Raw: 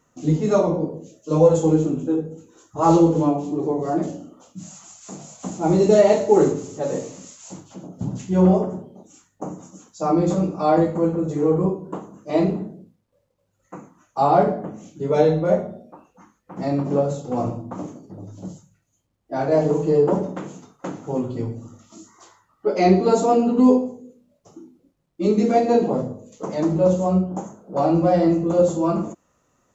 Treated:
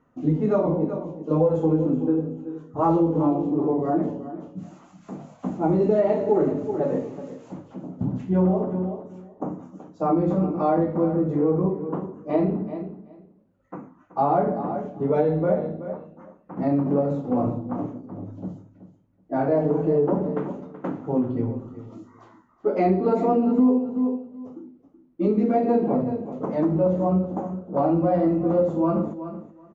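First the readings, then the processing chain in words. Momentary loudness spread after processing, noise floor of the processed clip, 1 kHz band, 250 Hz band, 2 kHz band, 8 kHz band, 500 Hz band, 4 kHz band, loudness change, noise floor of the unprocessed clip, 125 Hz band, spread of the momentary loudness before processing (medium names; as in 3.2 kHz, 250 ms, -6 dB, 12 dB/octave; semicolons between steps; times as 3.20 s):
17 LU, -58 dBFS, -3.5 dB, -1.5 dB, -6.5 dB, no reading, -3.5 dB, under -15 dB, -3.5 dB, -69 dBFS, -2.5 dB, 20 LU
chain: low-pass 1.8 kHz 12 dB/octave; peaking EQ 260 Hz +5.5 dB 0.36 oct; on a send: feedback delay 377 ms, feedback 16%, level -14 dB; on the sum: compression 3:1, threshold -18 dBFS, peak gain reduction 10 dB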